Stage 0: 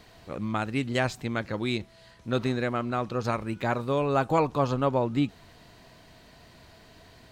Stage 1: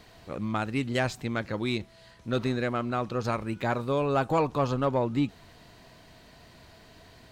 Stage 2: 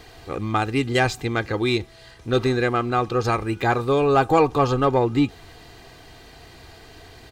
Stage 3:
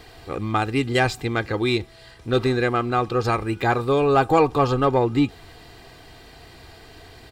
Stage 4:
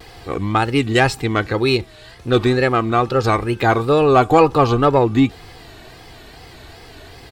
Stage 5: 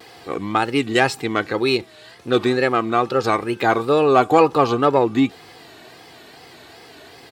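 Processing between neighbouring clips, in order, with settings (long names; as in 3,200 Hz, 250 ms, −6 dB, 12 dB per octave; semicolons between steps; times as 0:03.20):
soft clipping −14.5 dBFS, distortion −21 dB
comb filter 2.5 ms, depth 56%; level +7 dB
notch filter 6,300 Hz, Q 9.5
tape wow and flutter 120 cents; level +5 dB
high-pass filter 190 Hz 12 dB per octave; level −1.5 dB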